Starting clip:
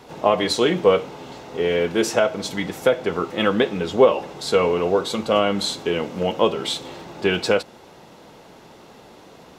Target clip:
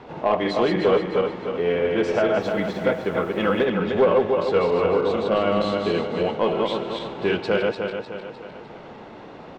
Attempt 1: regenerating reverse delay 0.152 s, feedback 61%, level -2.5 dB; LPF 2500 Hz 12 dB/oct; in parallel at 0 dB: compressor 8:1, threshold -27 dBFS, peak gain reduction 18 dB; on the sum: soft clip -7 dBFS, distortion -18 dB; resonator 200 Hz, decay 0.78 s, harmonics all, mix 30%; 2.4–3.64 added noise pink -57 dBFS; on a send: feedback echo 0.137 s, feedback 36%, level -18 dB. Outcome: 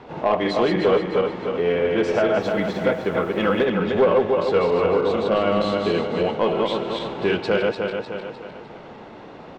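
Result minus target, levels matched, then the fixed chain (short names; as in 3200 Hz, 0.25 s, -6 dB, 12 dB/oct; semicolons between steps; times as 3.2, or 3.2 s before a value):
compressor: peak gain reduction -10 dB
regenerating reverse delay 0.152 s, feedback 61%, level -2.5 dB; LPF 2500 Hz 12 dB/oct; in parallel at 0 dB: compressor 8:1, threshold -38.5 dBFS, peak gain reduction 28 dB; on the sum: soft clip -7 dBFS, distortion -19 dB; resonator 200 Hz, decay 0.78 s, harmonics all, mix 30%; 2.4–3.64 added noise pink -57 dBFS; on a send: feedback echo 0.137 s, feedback 36%, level -18 dB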